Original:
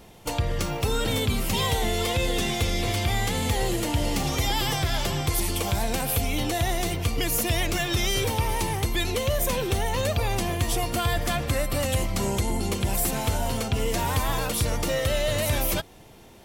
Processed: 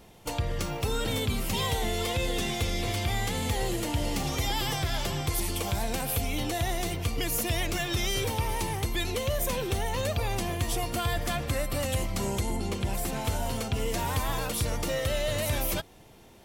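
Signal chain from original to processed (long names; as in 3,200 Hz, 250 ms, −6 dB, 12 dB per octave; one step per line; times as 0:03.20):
0:12.56–0:13.25: high-shelf EQ 7,200 Hz −8.5 dB
level −4 dB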